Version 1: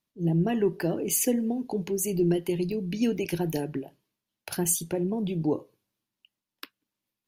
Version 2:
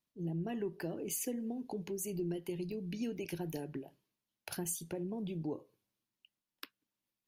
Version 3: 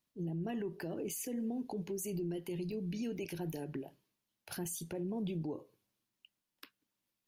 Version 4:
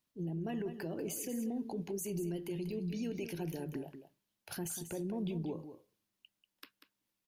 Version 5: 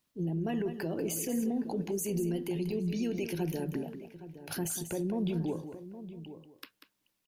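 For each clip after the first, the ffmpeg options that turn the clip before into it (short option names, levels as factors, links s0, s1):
-af "acompressor=threshold=0.0158:ratio=2,volume=0.562"
-af "alimiter=level_in=3.35:limit=0.0631:level=0:latency=1:release=39,volume=0.299,volume=1.41"
-af "aecho=1:1:190:0.299"
-filter_complex "[0:a]asplit=2[s0][s1];[s1]adelay=816.3,volume=0.224,highshelf=f=4000:g=-18.4[s2];[s0][s2]amix=inputs=2:normalize=0,volume=1.88"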